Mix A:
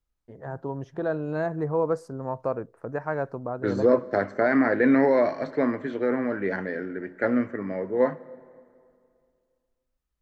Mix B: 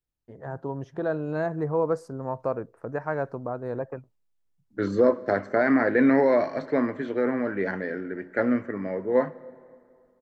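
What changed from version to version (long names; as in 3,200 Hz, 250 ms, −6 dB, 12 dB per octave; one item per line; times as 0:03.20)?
second voice: entry +1.15 s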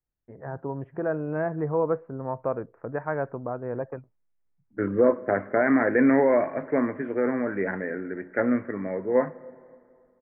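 master: add Butterworth low-pass 2,400 Hz 48 dB per octave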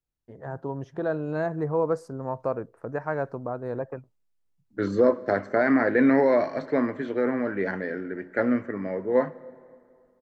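master: remove Butterworth low-pass 2,400 Hz 48 dB per octave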